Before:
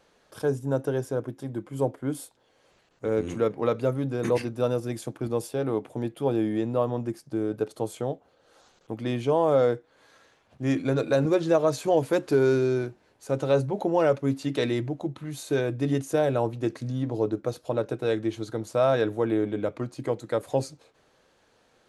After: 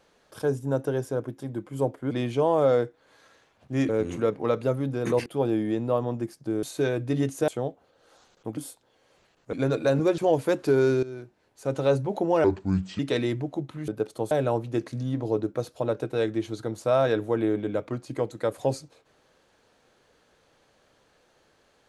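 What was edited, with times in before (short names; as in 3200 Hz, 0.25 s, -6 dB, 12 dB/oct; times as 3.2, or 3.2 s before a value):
2.11–3.07 swap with 9.01–10.79
4.44–6.12 cut
7.49–7.92 swap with 15.35–16.2
11.44–11.82 cut
12.67–13.44 fade in, from -16 dB
14.08–14.46 speed 69%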